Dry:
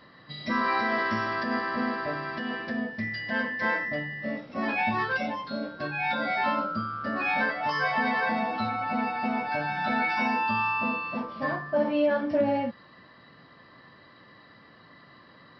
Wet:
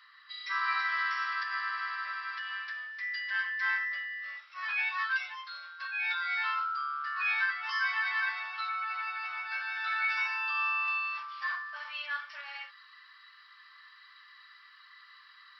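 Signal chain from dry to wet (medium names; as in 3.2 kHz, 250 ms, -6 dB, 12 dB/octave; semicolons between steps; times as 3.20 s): elliptic high-pass 1.2 kHz, stop band 80 dB; treble shelf 3.5 kHz -2 dB, from 10.88 s +5 dB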